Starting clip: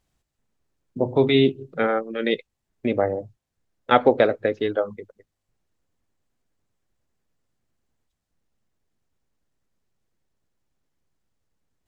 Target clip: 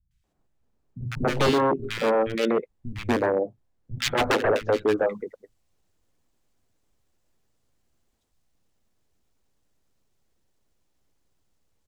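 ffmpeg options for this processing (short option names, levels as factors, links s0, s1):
-filter_complex "[0:a]asetnsamples=n=441:p=0,asendcmd='4.87 highshelf g 2',highshelf=f=2100:g=-10.5,aeval=exprs='0.119*(abs(mod(val(0)/0.119+3,4)-2)-1)':c=same,acrossover=split=160|1700[s0][s1][s2];[s2]adelay=110[s3];[s1]adelay=240[s4];[s0][s4][s3]amix=inputs=3:normalize=0,volume=1.68"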